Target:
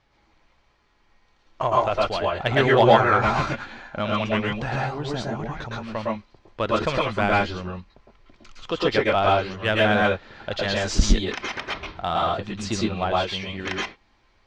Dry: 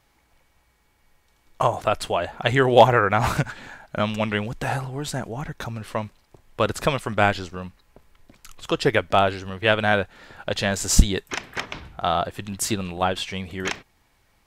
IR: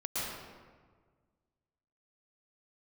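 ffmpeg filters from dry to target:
-filter_complex "[0:a]lowpass=frequency=5400:width=0.5412,lowpass=frequency=5400:width=1.3066,aphaser=in_gain=1:out_gain=1:delay=4:decay=0.2:speed=0.4:type=sinusoidal,asplit=2[link_01][link_02];[link_02]asoftclip=type=tanh:threshold=-17dB,volume=-8dB[link_03];[link_01][link_03]amix=inputs=2:normalize=0[link_04];[1:a]atrim=start_sample=2205,atrim=end_sample=6174[link_05];[link_04][link_05]afir=irnorm=-1:irlink=0,volume=-2.5dB"

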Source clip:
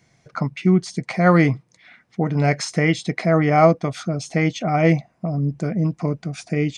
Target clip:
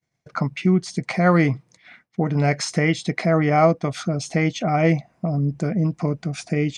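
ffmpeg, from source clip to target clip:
ffmpeg -i in.wav -filter_complex "[0:a]agate=range=-33dB:threshold=-46dB:ratio=3:detection=peak,asplit=2[link_01][link_02];[link_02]acompressor=threshold=-23dB:ratio=6,volume=1.5dB[link_03];[link_01][link_03]amix=inputs=2:normalize=0,volume=-4.5dB" out.wav

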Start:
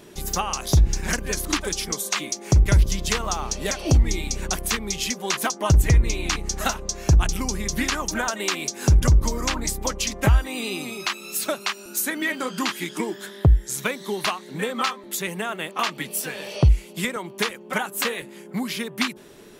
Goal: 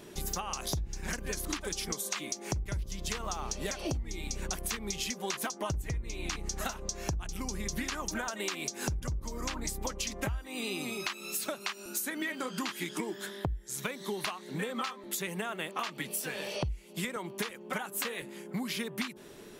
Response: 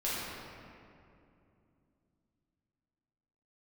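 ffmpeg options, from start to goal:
-af "acompressor=threshold=-28dB:ratio=12,volume=-3dB"

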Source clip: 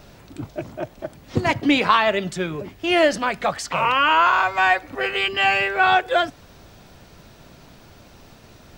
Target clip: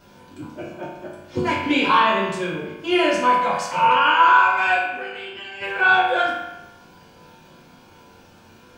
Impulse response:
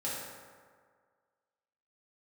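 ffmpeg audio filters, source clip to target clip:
-filter_complex "[0:a]asplit=3[link_01][link_02][link_03];[link_01]afade=type=out:start_time=4.85:duration=0.02[link_04];[link_02]acompressor=threshold=-29dB:ratio=10,afade=type=in:start_time=4.85:duration=0.02,afade=type=out:start_time=5.6:duration=0.02[link_05];[link_03]afade=type=in:start_time=5.6:duration=0.02[link_06];[link_04][link_05][link_06]amix=inputs=3:normalize=0[link_07];[1:a]atrim=start_sample=2205,asetrate=79380,aresample=44100[link_08];[link_07][link_08]afir=irnorm=-1:irlink=0"

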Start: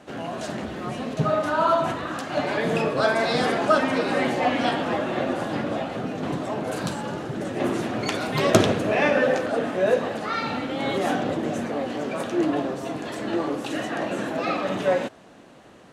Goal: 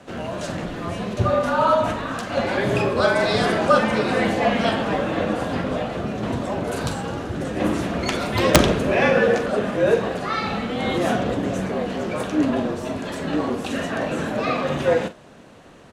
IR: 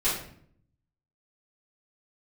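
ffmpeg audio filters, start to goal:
-filter_complex "[0:a]asplit=2[link_01][link_02];[link_02]adelay=43,volume=-12.5dB[link_03];[link_01][link_03]amix=inputs=2:normalize=0,afreqshift=-44,aeval=exprs='(mod(1.5*val(0)+1,2)-1)/1.5':channel_layout=same,volume=2.5dB"

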